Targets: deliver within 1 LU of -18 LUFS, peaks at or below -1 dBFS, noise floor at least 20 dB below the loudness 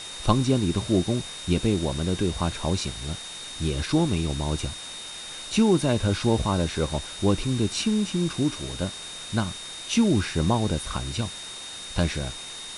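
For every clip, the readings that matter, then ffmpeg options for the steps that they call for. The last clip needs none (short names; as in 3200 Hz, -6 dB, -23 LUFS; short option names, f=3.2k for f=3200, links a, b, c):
steady tone 3700 Hz; tone level -38 dBFS; noise floor -38 dBFS; noise floor target -46 dBFS; loudness -26.0 LUFS; peak -4.5 dBFS; loudness target -18.0 LUFS
-> -af "bandreject=f=3.7k:w=30"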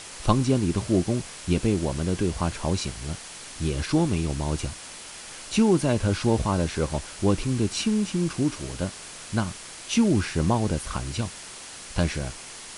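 steady tone none; noise floor -41 dBFS; noise floor target -46 dBFS
-> -af "afftdn=nr=6:nf=-41"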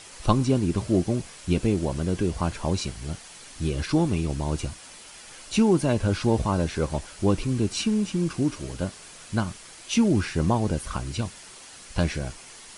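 noise floor -46 dBFS; loudness -26.0 LUFS; peak -5.0 dBFS; loudness target -18.0 LUFS
-> -af "volume=8dB,alimiter=limit=-1dB:level=0:latency=1"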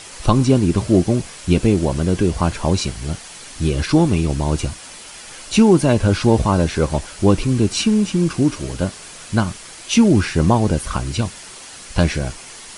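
loudness -18.0 LUFS; peak -1.0 dBFS; noise floor -38 dBFS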